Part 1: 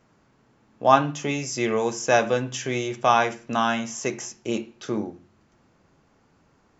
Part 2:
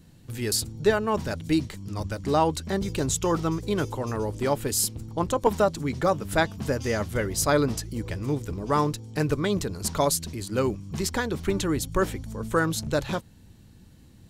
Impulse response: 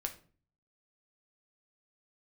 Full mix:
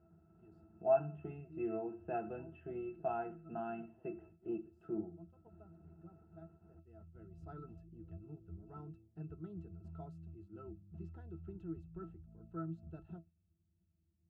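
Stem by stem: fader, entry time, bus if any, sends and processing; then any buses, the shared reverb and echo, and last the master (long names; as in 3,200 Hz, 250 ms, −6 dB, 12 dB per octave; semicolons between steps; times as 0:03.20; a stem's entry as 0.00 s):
−3.0 dB, 0.00 s, no send, low-pass filter 2,600 Hz 24 dB per octave; upward compression, threshold −38 dBFS; every ending faded ahead of time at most 190 dB per second
−12.5 dB, 0.00 s, no send, automatic ducking −12 dB, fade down 0.30 s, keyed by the first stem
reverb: not used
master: noise gate −52 dBFS, range −8 dB; high-shelf EQ 2,100 Hz −11.5 dB; resonances in every octave E, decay 0.13 s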